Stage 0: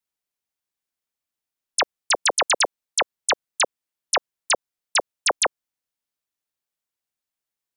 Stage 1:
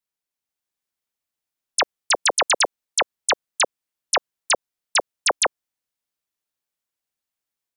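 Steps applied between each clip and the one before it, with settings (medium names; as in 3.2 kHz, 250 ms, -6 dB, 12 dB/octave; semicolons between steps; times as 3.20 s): level rider gain up to 3 dB; trim -2 dB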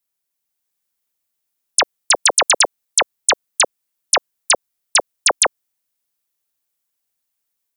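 treble shelf 7.6 kHz +10 dB; trim +3 dB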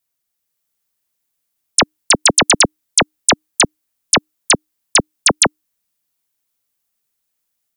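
frequency shift -310 Hz; trim +2.5 dB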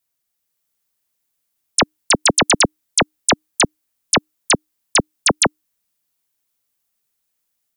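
peak limiter -6.5 dBFS, peak gain reduction 4.5 dB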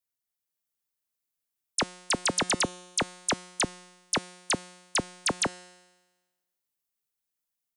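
feedback comb 180 Hz, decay 1.2 s, mix 60%; trim -4.5 dB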